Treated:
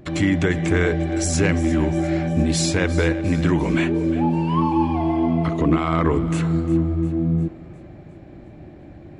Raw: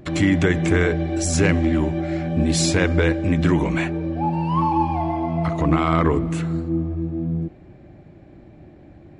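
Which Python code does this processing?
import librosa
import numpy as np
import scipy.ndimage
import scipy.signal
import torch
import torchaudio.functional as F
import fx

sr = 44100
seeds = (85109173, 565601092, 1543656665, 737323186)

y = fx.graphic_eq_31(x, sr, hz=(250, 400, 800, 3150), db=(9, 11, -5, 5), at=(3.68, 5.78))
y = fx.rider(y, sr, range_db=4, speed_s=0.5)
y = fx.echo_thinned(y, sr, ms=353, feedback_pct=53, hz=480.0, wet_db=-16.0)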